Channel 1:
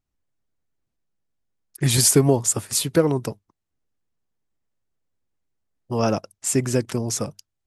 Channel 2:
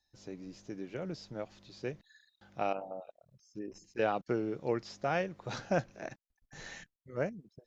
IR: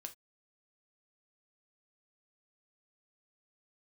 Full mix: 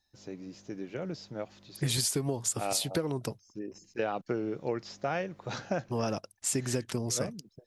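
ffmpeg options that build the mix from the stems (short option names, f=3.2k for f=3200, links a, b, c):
-filter_complex "[0:a]adynamicequalizer=threshold=0.0126:dfrequency=4000:dqfactor=1.1:tfrequency=4000:tqfactor=1.1:attack=5:release=100:ratio=0.375:range=3:mode=boostabove:tftype=bell,volume=-6dB,asplit=2[a][b];[1:a]highpass=58,volume=2.5dB[c];[b]apad=whole_len=338002[d];[c][d]sidechaincompress=threshold=-27dB:ratio=8:attack=16:release=276[e];[a][e]amix=inputs=2:normalize=0,acompressor=threshold=-26dB:ratio=12"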